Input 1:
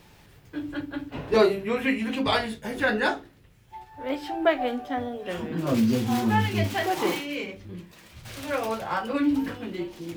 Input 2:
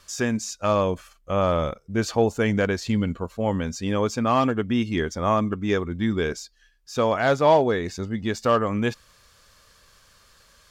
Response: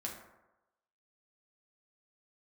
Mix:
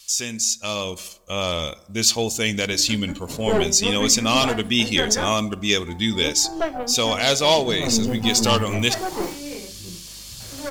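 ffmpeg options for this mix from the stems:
-filter_complex "[0:a]equalizer=f=3.9k:w=0.73:g=-14,aeval=exprs='val(0)+0.00355*(sin(2*PI*50*n/s)+sin(2*PI*2*50*n/s)/2+sin(2*PI*3*50*n/s)/3+sin(2*PI*4*50*n/s)/4+sin(2*PI*5*50*n/s)/5)':c=same,aeval=exprs='(tanh(8.91*val(0)+0.75)-tanh(0.75))/8.91':c=same,adelay=2150,volume=-4.5dB[a];[1:a]aexciter=amount=8.7:drive=5.2:freq=2.3k,volume=-11dB,asplit=2[b][c];[c]volume=-12.5dB[d];[2:a]atrim=start_sample=2205[e];[d][e]afir=irnorm=-1:irlink=0[f];[a][b][f]amix=inputs=3:normalize=0,dynaudnorm=f=210:g=9:m=9.5dB"

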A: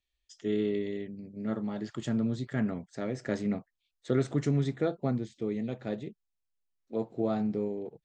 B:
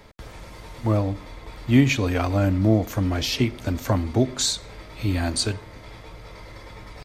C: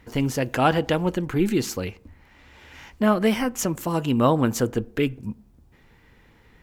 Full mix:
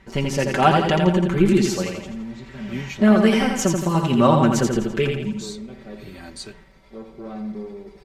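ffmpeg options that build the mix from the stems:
-filter_complex "[0:a]asoftclip=type=tanh:threshold=-25.5dB,volume=-4.5dB,asplit=2[a][b];[b]volume=-8.5dB[c];[1:a]adelay=1000,volume=-13.5dB[d];[2:a]lowpass=8.3k,volume=1dB,asplit=3[e][f][g];[f]volume=-4.5dB[h];[g]apad=whole_len=354837[i];[d][i]sidechaincompress=threshold=-34dB:ratio=8:attack=16:release=275[j];[c][h]amix=inputs=2:normalize=0,aecho=0:1:84|168|252|336|420|504|588:1|0.49|0.24|0.118|0.0576|0.0282|0.0138[k];[a][j][e][k]amix=inputs=4:normalize=0,aecho=1:1:5.2:0.77"

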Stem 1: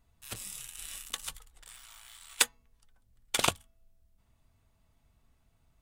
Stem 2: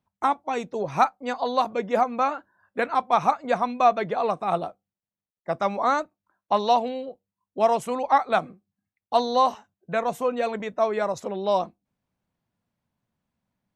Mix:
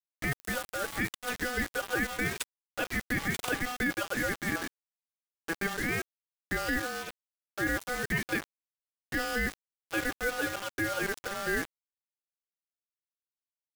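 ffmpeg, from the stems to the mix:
-filter_complex "[0:a]acompressor=threshold=-53dB:ratio=1.5,aeval=exprs='val(0)+0.000251*(sin(2*PI*60*n/s)+sin(2*PI*2*60*n/s)/2+sin(2*PI*3*60*n/s)/3+sin(2*PI*4*60*n/s)/4+sin(2*PI*5*60*n/s)/5)':c=same,volume=0dB[a];[1:a]highpass=f=50:p=1,aeval=exprs='val(0)*sin(2*PI*990*n/s)':c=same,volume=-3.5dB[b];[a][b]amix=inputs=2:normalize=0,acrusher=bits=5:mix=0:aa=0.000001,alimiter=limit=-19.5dB:level=0:latency=1:release=10"

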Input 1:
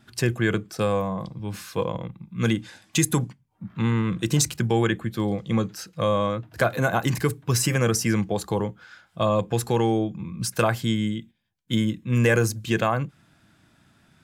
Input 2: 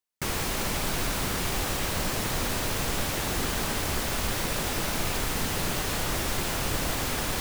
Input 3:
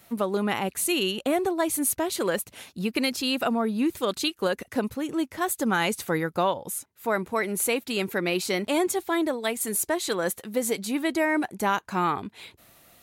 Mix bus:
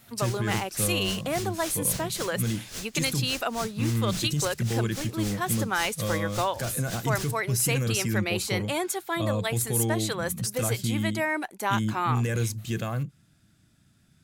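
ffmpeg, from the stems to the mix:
-filter_complex "[0:a]bass=f=250:g=9,treble=f=4k:g=10,volume=-9.5dB[a];[1:a]equalizer=f=6.2k:w=0.56:g=11.5,asoftclip=type=tanh:threshold=-19.5dB,aeval=exprs='val(0)*pow(10,-24*(0.5-0.5*cos(2*PI*3.6*n/s))/20)':c=same,volume=-8dB[b];[2:a]highpass=f=650:p=1,volume=-0.5dB[c];[a][b]amix=inputs=2:normalize=0,equalizer=f=930:w=2.6:g=-6,alimiter=limit=-19.5dB:level=0:latency=1:release=19,volume=0dB[d];[c][d]amix=inputs=2:normalize=0"

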